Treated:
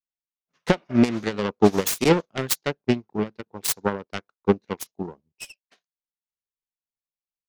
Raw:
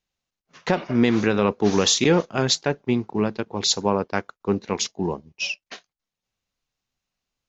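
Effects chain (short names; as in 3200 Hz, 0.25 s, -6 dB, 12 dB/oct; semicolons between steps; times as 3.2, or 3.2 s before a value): self-modulated delay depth 0.28 ms; transient shaper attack +5 dB, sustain +1 dB; upward expander 2.5:1, over -31 dBFS; gain +3 dB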